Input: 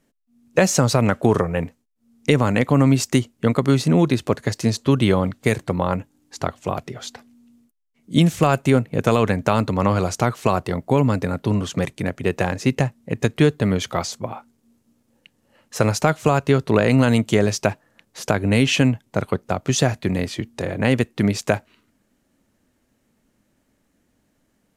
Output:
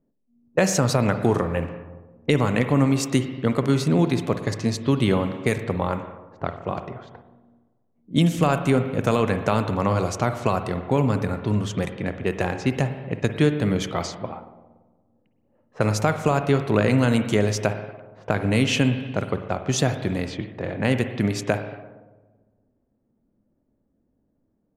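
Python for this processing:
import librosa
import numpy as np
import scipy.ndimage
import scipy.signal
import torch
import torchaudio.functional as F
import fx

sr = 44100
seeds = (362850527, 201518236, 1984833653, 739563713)

y = fx.rev_spring(x, sr, rt60_s=1.5, pass_ms=(47, 57), chirp_ms=75, drr_db=8.0)
y = fx.env_lowpass(y, sr, base_hz=600.0, full_db=-17.0)
y = y * librosa.db_to_amplitude(-3.5)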